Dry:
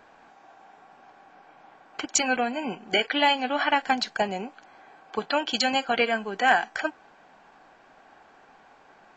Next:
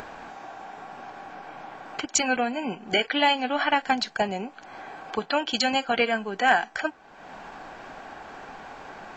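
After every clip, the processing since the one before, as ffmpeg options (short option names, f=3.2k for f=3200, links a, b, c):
-af "lowshelf=f=130:g=6,acompressor=mode=upward:threshold=-29dB:ratio=2.5"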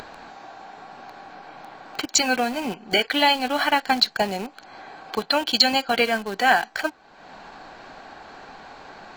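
-filter_complex "[0:a]equalizer=f=4.2k:w=4.5:g=10.5,asplit=2[a][b];[b]acrusher=bits=4:mix=0:aa=0.000001,volume=-7dB[c];[a][c]amix=inputs=2:normalize=0,volume=-1dB"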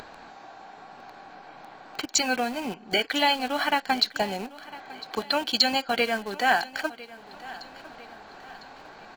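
-af "aecho=1:1:1003|2006|3009|4012:0.119|0.0523|0.023|0.0101,volume=-4dB"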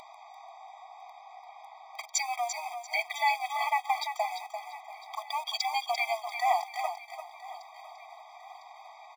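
-af "aecho=1:1:343|686|1029:0.398|0.0995|0.0249,afftfilt=real='re*eq(mod(floor(b*sr/1024/640),2),1)':imag='im*eq(mod(floor(b*sr/1024/640),2),1)':win_size=1024:overlap=0.75,volume=-2dB"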